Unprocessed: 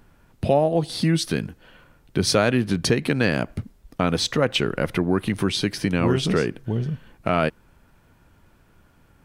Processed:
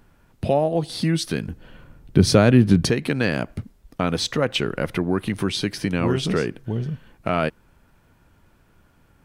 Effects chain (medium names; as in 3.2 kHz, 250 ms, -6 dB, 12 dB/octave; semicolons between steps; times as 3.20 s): 1.48–2.86 s: bass shelf 370 Hz +11.5 dB; trim -1 dB